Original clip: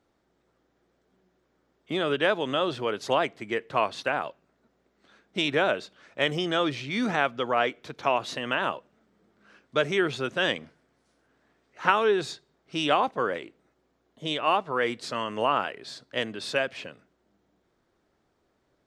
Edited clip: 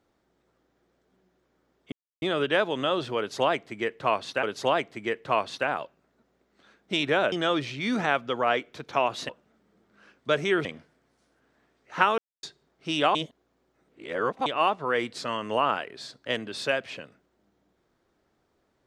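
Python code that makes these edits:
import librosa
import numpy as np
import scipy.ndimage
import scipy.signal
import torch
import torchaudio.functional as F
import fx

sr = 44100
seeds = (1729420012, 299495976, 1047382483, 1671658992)

y = fx.edit(x, sr, fx.insert_silence(at_s=1.92, length_s=0.3),
    fx.repeat(start_s=2.88, length_s=1.25, count=2),
    fx.cut(start_s=5.77, length_s=0.65),
    fx.cut(start_s=8.39, length_s=0.37),
    fx.cut(start_s=10.12, length_s=0.4),
    fx.silence(start_s=12.05, length_s=0.25),
    fx.reverse_span(start_s=13.02, length_s=1.31), tone=tone)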